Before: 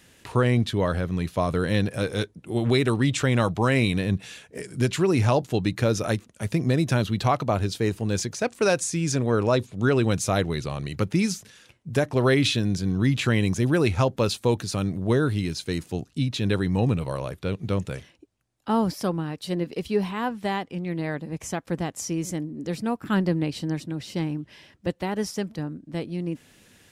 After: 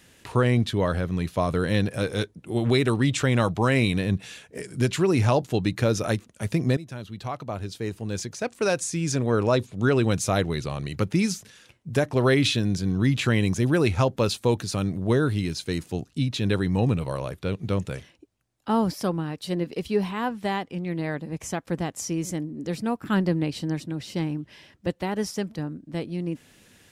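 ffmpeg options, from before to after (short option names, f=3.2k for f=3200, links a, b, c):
-filter_complex "[0:a]asplit=2[a][b];[a]atrim=end=6.77,asetpts=PTS-STARTPTS,afade=t=out:st=6.766:d=0.004:c=hsin:silence=0.133352[c];[b]atrim=start=6.77,asetpts=PTS-STARTPTS,afade=t=in:d=2.62:silence=0.133352[d];[c][d]concat=n=2:v=0:a=1"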